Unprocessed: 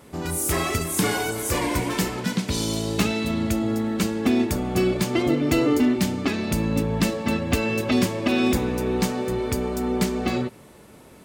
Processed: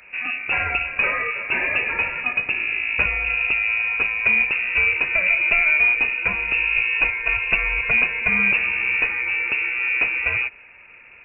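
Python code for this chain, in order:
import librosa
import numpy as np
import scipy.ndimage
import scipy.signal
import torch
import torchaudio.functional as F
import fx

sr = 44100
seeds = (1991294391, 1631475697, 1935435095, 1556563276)

y = fx.freq_invert(x, sr, carrier_hz=2700)
y = y * librosa.db_to_amplitude(2.0)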